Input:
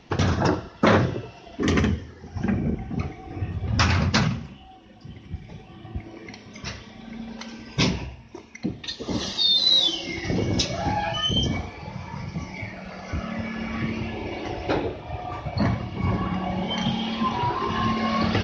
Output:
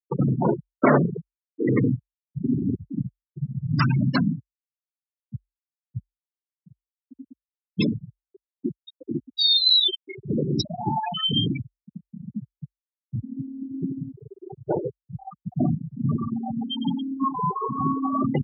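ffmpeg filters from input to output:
ffmpeg -i in.wav -af "afftfilt=real='re*gte(hypot(re,im),0.224)':imag='im*gte(hypot(re,im),0.224)':win_size=1024:overlap=0.75,afreqshift=44,volume=1dB" out.wav

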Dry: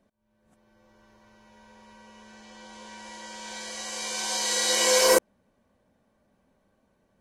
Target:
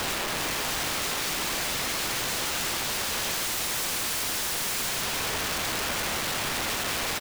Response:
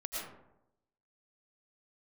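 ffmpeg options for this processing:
-filter_complex "[0:a]aeval=exprs='val(0)+0.5*0.0631*sgn(val(0))':channel_layout=same,equalizer=frequency=140:width_type=o:width=0.5:gain=-11,asplit=2[link_01][link_02];[link_02]highpass=frequency=720:poles=1,volume=38dB,asoftclip=type=tanh:threshold=-5.5dB[link_03];[link_01][link_03]amix=inputs=2:normalize=0,lowpass=frequency=2400:poles=1,volume=-6dB,afwtdn=0.1,alimiter=limit=-17.5dB:level=0:latency=1,bandreject=frequency=60:width_type=h:width=6,bandreject=frequency=120:width_type=h:width=6,bandreject=frequency=180:width_type=h:width=6,bandreject=frequency=240:width_type=h:width=6,bandreject=frequency=300:width_type=h:width=6,bandreject=frequency=360:width_type=h:width=6,bandreject=frequency=420:width_type=h:width=6,bandreject=frequency=480:width_type=h:width=6,aecho=1:1:6:0.68,asplit=2[link_04][link_05];[link_05]adelay=90,highpass=300,lowpass=3400,asoftclip=type=hard:threshold=-25.5dB,volume=-15dB[link_06];[link_04][link_06]amix=inputs=2:normalize=0,asplit=2[link_07][link_08];[1:a]atrim=start_sample=2205,adelay=101[link_09];[link_08][link_09]afir=irnorm=-1:irlink=0,volume=-24dB[link_10];[link_07][link_10]amix=inputs=2:normalize=0,aeval=exprs='(mod(13.3*val(0)+1,2)-1)/13.3':channel_layout=same,volume=-2dB"

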